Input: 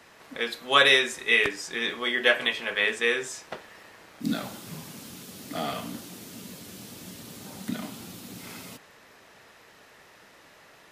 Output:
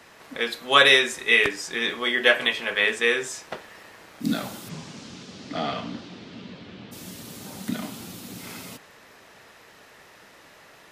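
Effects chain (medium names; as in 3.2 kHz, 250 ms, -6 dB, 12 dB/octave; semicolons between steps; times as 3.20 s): 4.68–6.91 s: low-pass 7.4 kHz -> 3.4 kHz 24 dB/octave; trim +3 dB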